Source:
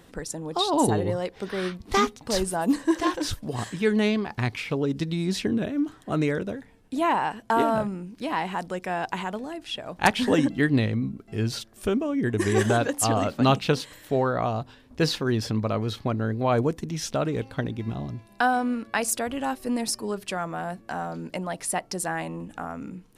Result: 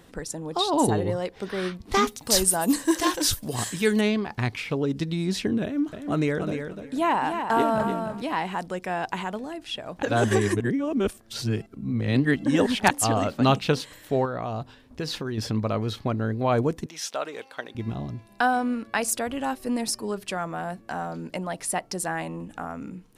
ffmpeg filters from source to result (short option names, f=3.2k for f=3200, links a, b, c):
-filter_complex "[0:a]asettb=1/sr,asplit=3[a][b][c];[a]atrim=end=2.074[d];[b]atrim=start=2.07:end=4.01,asetpts=PTS-STARTPTS,afade=t=in:d=0.004:c=qsin,afade=t=out:st=1.936:d=0.004:c=qsin,aemphasis=mode=production:type=75kf[e];[c]atrim=start=4.006[f];[d][e]acrossfade=d=0.004:c1=hsin:c2=qsin[g];[g][f]acrossfade=d=0.004:c1=qsin:c2=hsin,asettb=1/sr,asplit=3[h][i][j];[h]atrim=end=5.634[k];[i]atrim=start=5.63:end=8.22,asetpts=PTS-STARTPTS,afade=t=in:d=0.004:c=qsin,afade=t=out:st=2.586:d=0.004:c=qsin,aecho=1:1:297|594|891:0.447|0.0759|0.0129,atrim=end_sample=114219[l];[j]atrim=start=8.216[m];[k][l]acrossfade=d=0.004:c1=hsin:c2=qsin[n];[n][m]acrossfade=d=0.004:c1=qsin:c2=hsin,asettb=1/sr,asplit=3[o][p][q];[o]atrim=end=14.254[r];[p]atrim=start=14.25:end=15.38,asetpts=PTS-STARTPTS,afade=t=in:d=0.004:c=qsin,afade=t=out:st=1.126:d=0.004:c=qsin,acompressor=threshold=-26dB:ratio=6:attack=3.2:release=140:knee=1:detection=peak[s];[q]atrim=start=15.376[t];[r][s]acrossfade=d=0.004:c1=hsin:c2=qsin[u];[u][t]acrossfade=d=0.004:c1=qsin:c2=hsin,asettb=1/sr,asplit=3[v][w][x];[v]atrim=end=16.864[y];[w]atrim=start=16.86:end=17.75,asetpts=PTS-STARTPTS,afade=t=in:d=0.004:c=qsin,afade=t=out:st=0.886:d=0.004:c=qsin,highpass=640[z];[x]atrim=start=17.746[aa];[y][z]acrossfade=d=0.004:c1=hsin:c2=qsin[ab];[ab][aa]acrossfade=d=0.004:c1=qsin:c2=hsin,asplit=3[ac][ad][ae];[ac]atrim=end=10.032[af];[ad]atrim=start=10.028:end=12.912,asetpts=PTS-STARTPTS,areverse[ag];[ae]atrim=start=12.908[ah];[af][ag]acrossfade=d=0.004:c1=hsin:c2=hsin[ai];[ai][ah]acrossfade=d=0.004:c1=hsin:c2=hsin"